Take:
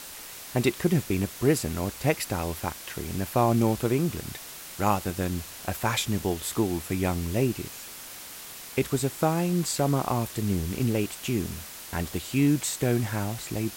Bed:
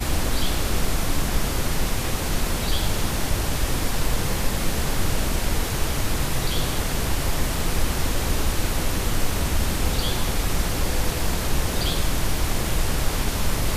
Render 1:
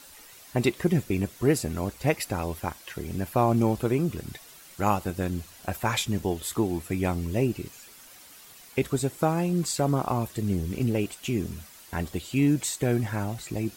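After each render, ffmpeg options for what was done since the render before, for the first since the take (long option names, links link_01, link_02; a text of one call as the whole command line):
ffmpeg -i in.wav -af "afftdn=noise_reduction=10:noise_floor=-42" out.wav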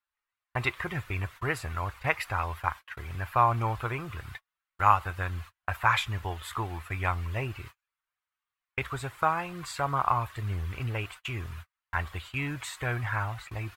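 ffmpeg -i in.wav -af "agate=range=-40dB:threshold=-39dB:ratio=16:detection=peak,firequalizer=gain_entry='entry(100,0);entry(190,-19);entry(1100,9);entry(5600,-12)':delay=0.05:min_phase=1" out.wav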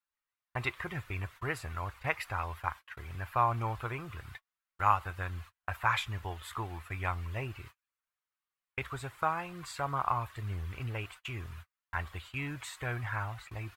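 ffmpeg -i in.wav -af "volume=-5dB" out.wav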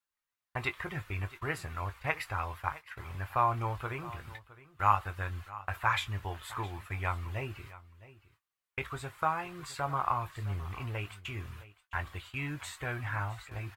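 ffmpeg -i in.wav -filter_complex "[0:a]asplit=2[link_01][link_02];[link_02]adelay=20,volume=-10.5dB[link_03];[link_01][link_03]amix=inputs=2:normalize=0,aecho=1:1:663:0.126" out.wav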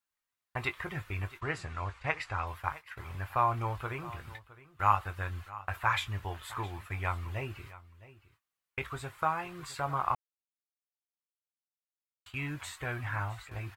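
ffmpeg -i in.wav -filter_complex "[0:a]asettb=1/sr,asplit=3[link_01][link_02][link_03];[link_01]atrim=end=1.414[link_04];[link_02]atrim=start=1.41:end=2.47,asetpts=PTS-STARTPTS,afade=type=in:duration=0.004:curve=qsin,afade=type=out:start_time=1.056:duration=0.004:curve=qsin,lowpass=frequency=8200:width=0.5412,lowpass=frequency=8200:width=1.3066[link_05];[link_03]atrim=start=2.466[link_06];[link_04][link_05]acrossfade=duration=0.004:curve1=hsin:curve2=qsin[link_07];[link_07][link_06]acrossfade=duration=0.004:curve1=qsin:curve2=hsin,asplit=3[link_08][link_09][link_10];[link_08]atrim=end=10.15,asetpts=PTS-STARTPTS,afade=type=out:start_time=10.146:duration=0.004:curve=hsin[link_11];[link_09]atrim=start=10.15:end=12.26,asetpts=PTS-STARTPTS,volume=0[link_12];[link_10]atrim=start=12.26,asetpts=PTS-STARTPTS,afade=type=in:duration=0.004:curve=hsin[link_13];[link_11][link_12][link_13]concat=n=3:v=0:a=1" out.wav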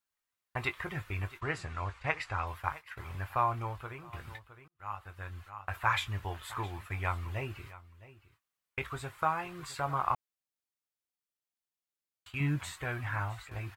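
ffmpeg -i in.wav -filter_complex "[0:a]asettb=1/sr,asplit=3[link_01][link_02][link_03];[link_01]atrim=end=12.404[link_04];[link_02]atrim=start=12.4:end=12.8,asetpts=PTS-STARTPTS,afade=type=in:duration=0.004:curve=qsin,afade=type=out:start_time=0.396:duration=0.004:curve=qsin,equalizer=frequency=160:width=0.6:gain=9[link_05];[link_03]atrim=start=12.796[link_06];[link_04][link_05]acrossfade=duration=0.004:curve1=hsin:curve2=qsin[link_07];[link_07][link_06]acrossfade=duration=0.004:curve1=qsin:curve2=hsin,asplit=3[link_08][link_09][link_10];[link_08]atrim=end=4.13,asetpts=PTS-STARTPTS,afade=type=out:start_time=3.19:duration=0.94:silence=0.334965[link_11];[link_09]atrim=start=4.13:end=4.68,asetpts=PTS-STARTPTS,afade=type=in:duration=0.004:curve=hsin:silence=0.334965,afade=type=out:start_time=0.546:duration=0.004:curve=hsin[link_12];[link_10]atrim=start=4.68,asetpts=PTS-STARTPTS,afade=type=in:duration=1.22[link_13];[link_11][link_12][link_13]concat=n=3:v=0:a=1" out.wav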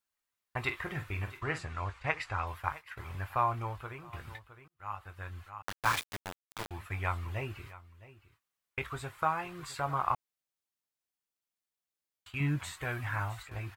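ffmpeg -i in.wav -filter_complex "[0:a]asettb=1/sr,asplit=3[link_01][link_02][link_03];[link_01]atrim=end=0.624[link_04];[link_02]atrim=start=0.62:end=1.59,asetpts=PTS-STARTPTS,afade=type=in:duration=0.004:curve=qsin,afade=type=out:start_time=0.966:duration=0.004:curve=qsin,asplit=2[link_05][link_06];[link_06]adelay=46,volume=-10dB[link_07];[link_05][link_07]amix=inputs=2:normalize=0,atrim=end_sample=42777[link_08];[link_03]atrim=start=1.586[link_09];[link_04][link_08]acrossfade=duration=0.004:curve1=hsin:curve2=qsin[link_10];[link_10][link_09]acrossfade=duration=0.004:curve1=qsin:curve2=hsin,asettb=1/sr,asplit=3[link_11][link_12][link_13];[link_11]atrim=end=5.624[link_14];[link_12]atrim=start=5.62:end=6.71,asetpts=PTS-STARTPTS,afade=type=in:duration=0.004:curve=qsin,afade=type=out:start_time=1.086:duration=0.004:curve=qsin,aeval=exprs='val(0)*gte(abs(val(0)),0.0335)':channel_layout=same[link_15];[link_13]atrim=start=6.706[link_16];[link_14][link_15]acrossfade=duration=0.004:curve1=hsin:curve2=qsin[link_17];[link_17][link_16]acrossfade=duration=0.004:curve1=qsin:curve2=hsin,asettb=1/sr,asplit=3[link_18][link_19][link_20];[link_18]atrim=end=12.814[link_21];[link_19]atrim=start=12.81:end=13.43,asetpts=PTS-STARTPTS,afade=type=in:duration=0.004:curve=qsin,afade=type=out:start_time=0.616:duration=0.004:curve=qsin,highshelf=frequency=5700:gain=6[link_22];[link_20]atrim=start=13.426[link_23];[link_21][link_22]acrossfade=duration=0.004:curve1=hsin:curve2=qsin[link_24];[link_24][link_23]acrossfade=duration=0.004:curve1=qsin:curve2=hsin" out.wav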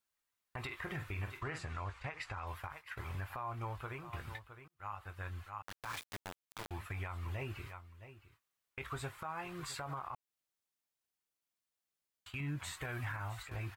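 ffmpeg -i in.wav -af "acompressor=threshold=-36dB:ratio=3,alimiter=level_in=7.5dB:limit=-24dB:level=0:latency=1:release=49,volume=-7.5dB" out.wav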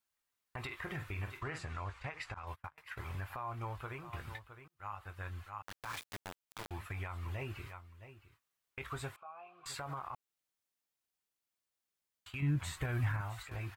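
ffmpeg -i in.wav -filter_complex "[0:a]asettb=1/sr,asplit=3[link_01][link_02][link_03];[link_01]atrim=end=2.344[link_04];[link_02]atrim=start=2.34:end=2.78,asetpts=PTS-STARTPTS,afade=type=in:duration=0.004:curve=qsin,afade=type=out:start_time=0.436:duration=0.004:curve=qsin,agate=range=-29dB:threshold=-44dB:ratio=16:release=100:detection=peak[link_05];[link_03]atrim=start=2.776[link_06];[link_04][link_05]acrossfade=duration=0.004:curve1=hsin:curve2=qsin[link_07];[link_07][link_06]acrossfade=duration=0.004:curve1=qsin:curve2=hsin,asettb=1/sr,asplit=3[link_08][link_09][link_10];[link_08]atrim=end=9.164[link_11];[link_09]atrim=start=9.16:end=9.66,asetpts=PTS-STARTPTS,afade=type=in:duration=0.004:curve=qsin,afade=type=out:start_time=0.496:duration=0.004:curve=qsin,asplit=3[link_12][link_13][link_14];[link_12]bandpass=frequency=730:width_type=q:width=8,volume=0dB[link_15];[link_13]bandpass=frequency=1090:width_type=q:width=8,volume=-6dB[link_16];[link_14]bandpass=frequency=2440:width_type=q:width=8,volume=-9dB[link_17];[link_15][link_16][link_17]amix=inputs=3:normalize=0[link_18];[link_10]atrim=start=9.656[link_19];[link_11][link_18]acrossfade=duration=0.004:curve1=hsin:curve2=qsin[link_20];[link_20][link_19]acrossfade=duration=0.004:curve1=qsin:curve2=hsin,asettb=1/sr,asplit=3[link_21][link_22][link_23];[link_21]atrim=end=12.424[link_24];[link_22]atrim=start=12.42:end=13.21,asetpts=PTS-STARTPTS,afade=type=in:duration=0.004:curve=qsin,afade=type=out:start_time=0.786:duration=0.004:curve=qsin,lowshelf=frequency=290:gain=10[link_25];[link_23]atrim=start=13.206[link_26];[link_24][link_25]acrossfade=duration=0.004:curve1=hsin:curve2=qsin[link_27];[link_27][link_26]acrossfade=duration=0.004:curve1=qsin:curve2=hsin" out.wav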